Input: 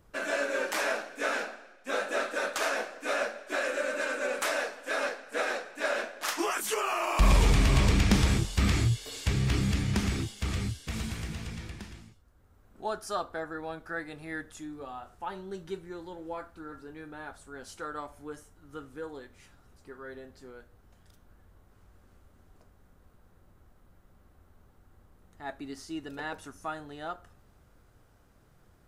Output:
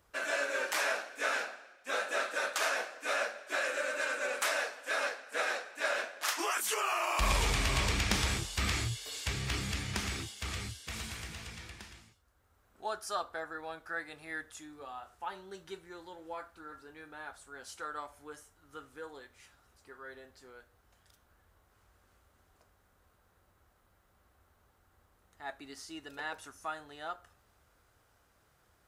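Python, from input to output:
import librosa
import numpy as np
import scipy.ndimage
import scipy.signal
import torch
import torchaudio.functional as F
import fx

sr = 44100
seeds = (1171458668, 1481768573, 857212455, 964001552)

y = scipy.signal.sosfilt(scipy.signal.butter(2, 64.0, 'highpass', fs=sr, output='sos'), x)
y = fx.peak_eq(y, sr, hz=180.0, db=-12.5, octaves=2.8)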